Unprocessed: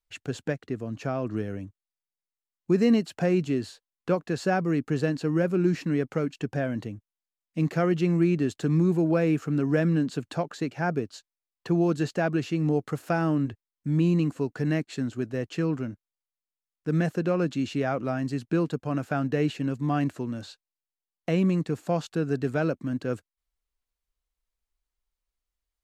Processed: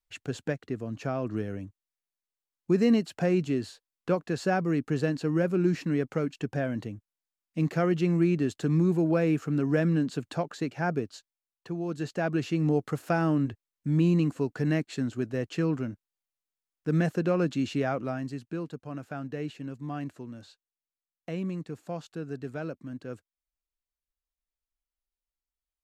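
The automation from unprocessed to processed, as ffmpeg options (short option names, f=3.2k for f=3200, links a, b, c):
-af "volume=9dB,afade=t=out:st=11.1:d=0.68:silence=0.334965,afade=t=in:st=11.78:d=0.71:silence=0.298538,afade=t=out:st=17.76:d=0.74:silence=0.354813"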